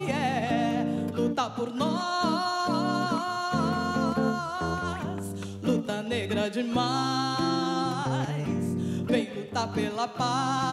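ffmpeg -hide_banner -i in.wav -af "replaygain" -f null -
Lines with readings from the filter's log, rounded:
track_gain = +9.8 dB
track_peak = 0.132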